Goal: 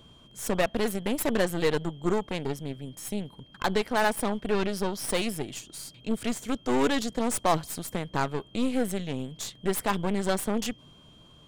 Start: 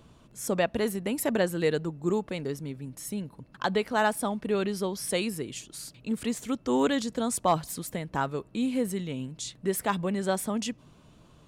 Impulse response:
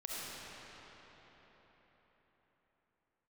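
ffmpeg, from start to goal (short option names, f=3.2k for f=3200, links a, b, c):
-af "aeval=exprs='val(0)+0.00158*sin(2*PI*3200*n/s)':c=same,aeval=exprs='0.211*(cos(1*acos(clip(val(0)/0.211,-1,1)))-cos(1*PI/2))+0.0266*(cos(8*acos(clip(val(0)/0.211,-1,1)))-cos(8*PI/2))':c=same"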